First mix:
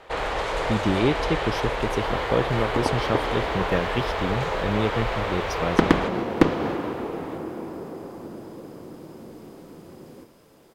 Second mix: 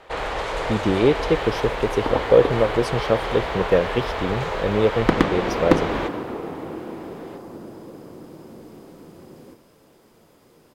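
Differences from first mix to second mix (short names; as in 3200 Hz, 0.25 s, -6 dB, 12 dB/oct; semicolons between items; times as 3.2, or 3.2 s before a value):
speech: add bell 510 Hz +12 dB 0.72 oct; second sound: entry -0.70 s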